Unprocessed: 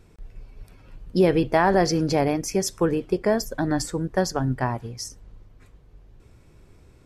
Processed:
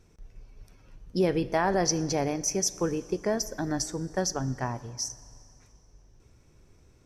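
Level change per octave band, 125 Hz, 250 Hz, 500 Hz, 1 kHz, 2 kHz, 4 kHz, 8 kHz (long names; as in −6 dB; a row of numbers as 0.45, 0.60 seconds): −6.5, −6.5, −6.5, −6.5, −6.5, −1.5, +3.5 decibels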